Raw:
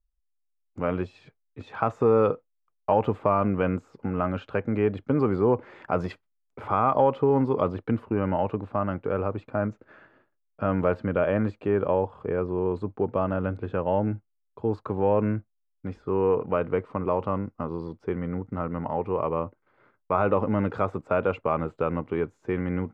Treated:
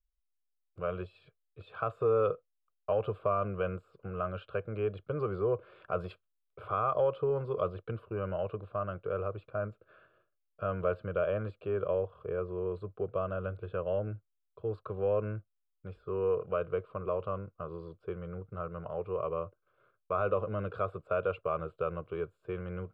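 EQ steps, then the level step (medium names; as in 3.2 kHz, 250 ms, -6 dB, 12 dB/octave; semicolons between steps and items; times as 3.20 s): static phaser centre 1.3 kHz, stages 8; -5.5 dB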